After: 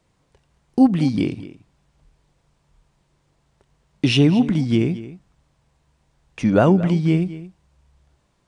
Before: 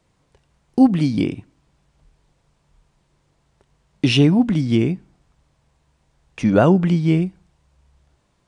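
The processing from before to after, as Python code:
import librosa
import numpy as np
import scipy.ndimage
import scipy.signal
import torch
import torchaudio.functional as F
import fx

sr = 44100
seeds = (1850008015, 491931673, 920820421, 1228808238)

y = x + 10.0 ** (-16.0 / 20.0) * np.pad(x, (int(223 * sr / 1000.0), 0))[:len(x)]
y = y * librosa.db_to_amplitude(-1.0)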